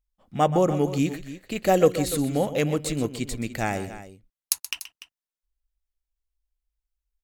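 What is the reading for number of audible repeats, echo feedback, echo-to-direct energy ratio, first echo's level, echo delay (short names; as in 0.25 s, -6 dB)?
2, no steady repeat, -11.0 dB, -13.5 dB, 0.127 s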